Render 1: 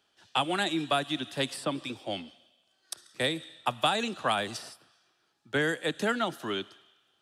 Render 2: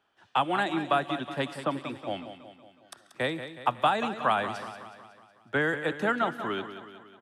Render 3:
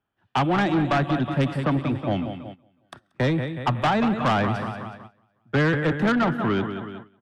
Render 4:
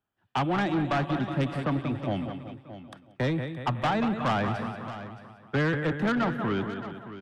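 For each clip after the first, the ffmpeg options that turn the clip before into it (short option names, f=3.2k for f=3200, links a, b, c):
-filter_complex "[0:a]firequalizer=gain_entry='entry(440,0);entry(960,5);entry(4400,-11)':delay=0.05:min_phase=1,asplit=2[a][b];[b]aecho=0:1:184|368|552|736|920|1104:0.282|0.152|0.0822|0.0444|0.024|0.0129[c];[a][c]amix=inputs=2:normalize=0"
-af "agate=range=-18dB:threshold=-48dB:ratio=16:detection=peak,bass=f=250:g=15,treble=f=4k:g=-12,asoftclip=type=tanh:threshold=-24dB,volume=7.5dB"
-af "aecho=1:1:621:0.211,volume=-5dB"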